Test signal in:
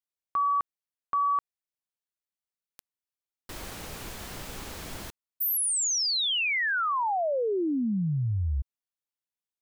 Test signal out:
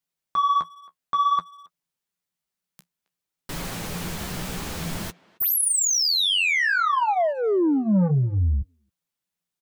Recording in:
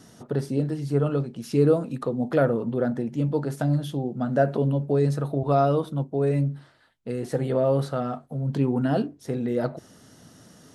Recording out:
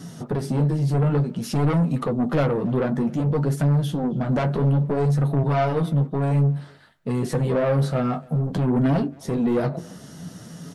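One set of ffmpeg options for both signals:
-filter_complex "[0:a]equalizer=f=170:t=o:w=0.33:g=13.5,asplit=2[a][b];[b]alimiter=limit=-17.5dB:level=0:latency=1:release=354,volume=1dB[c];[a][c]amix=inputs=2:normalize=0,asoftclip=type=tanh:threshold=-18dB,flanger=delay=7.1:depth=8.4:regen=-29:speed=0.56:shape=sinusoidal,asplit=2[d][e];[e]adelay=270,highpass=300,lowpass=3.4k,asoftclip=type=hard:threshold=-27dB,volume=-22dB[f];[d][f]amix=inputs=2:normalize=0,volume=4.5dB"

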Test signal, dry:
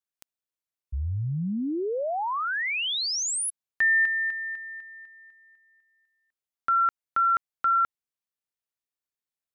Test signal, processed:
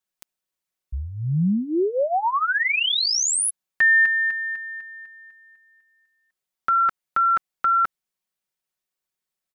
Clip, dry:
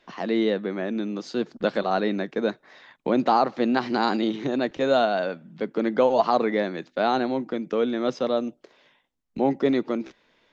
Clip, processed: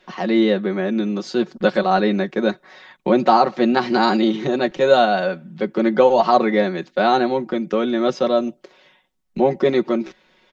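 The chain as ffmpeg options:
-af "aecho=1:1:5.4:0.71,volume=4.5dB"

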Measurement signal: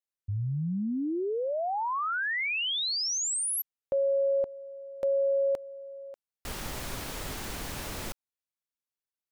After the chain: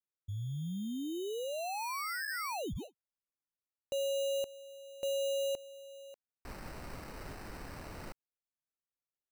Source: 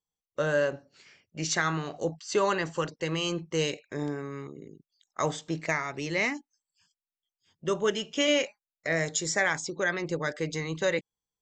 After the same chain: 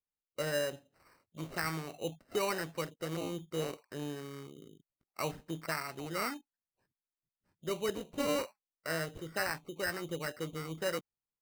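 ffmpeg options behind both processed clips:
-af "aresample=8000,aresample=44100,acrusher=samples=13:mix=1:aa=0.000001,volume=-7.5dB"

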